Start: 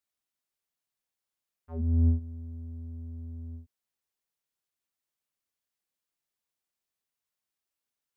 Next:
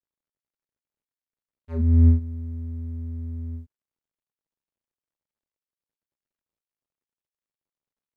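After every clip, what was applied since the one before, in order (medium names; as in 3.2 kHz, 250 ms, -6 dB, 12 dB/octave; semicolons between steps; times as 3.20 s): median filter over 41 samples; band-stop 730 Hz, Q 12; trim +8 dB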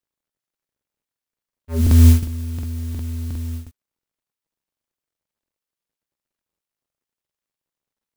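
modulation noise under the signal 20 dB; crackling interface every 0.36 s, samples 2048, repeat, from 0.38 s; trim +5.5 dB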